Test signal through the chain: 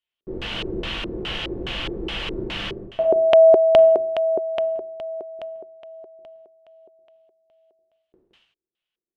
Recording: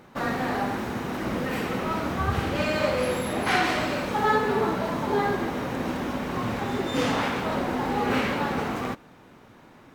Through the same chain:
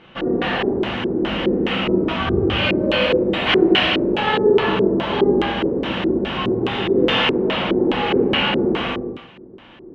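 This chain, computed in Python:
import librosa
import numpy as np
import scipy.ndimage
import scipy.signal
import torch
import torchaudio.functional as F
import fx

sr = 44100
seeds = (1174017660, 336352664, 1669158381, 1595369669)

y = x + 10.0 ** (-6.5 / 20.0) * np.pad(x, (int(169 * sr / 1000.0), 0))[:len(x)]
y = fx.rev_gated(y, sr, seeds[0], gate_ms=240, shape='falling', drr_db=-3.0)
y = fx.filter_lfo_lowpass(y, sr, shape='square', hz=2.4, low_hz=380.0, high_hz=3000.0, q=5.9)
y = y * librosa.db_to_amplitude(-1.0)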